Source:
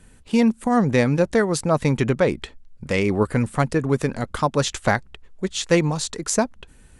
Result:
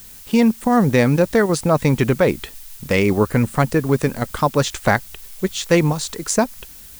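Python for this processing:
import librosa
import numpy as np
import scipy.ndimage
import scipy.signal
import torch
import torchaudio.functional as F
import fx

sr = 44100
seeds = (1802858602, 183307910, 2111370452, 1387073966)

p1 = fx.level_steps(x, sr, step_db=23)
p2 = x + (p1 * 10.0 ** (-1.0 / 20.0))
y = fx.dmg_noise_colour(p2, sr, seeds[0], colour='blue', level_db=-41.0)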